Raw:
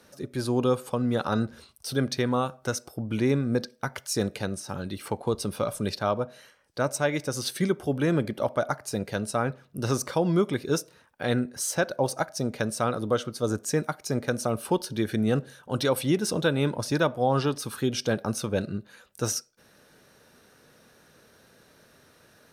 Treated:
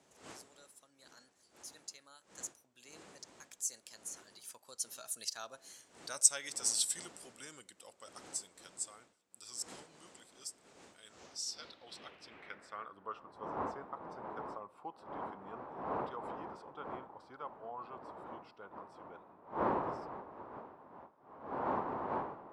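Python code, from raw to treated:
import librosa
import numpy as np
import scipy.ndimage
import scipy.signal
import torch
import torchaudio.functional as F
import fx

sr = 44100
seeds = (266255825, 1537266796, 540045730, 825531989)

y = fx.doppler_pass(x, sr, speed_mps=39, closest_m=26.0, pass_at_s=6.07)
y = fx.dmg_wind(y, sr, seeds[0], corner_hz=350.0, level_db=-37.0)
y = fx.filter_sweep_bandpass(y, sr, from_hz=7800.0, to_hz=1000.0, start_s=11.03, end_s=13.3, q=2.9)
y = y * 10.0 ** (11.0 / 20.0)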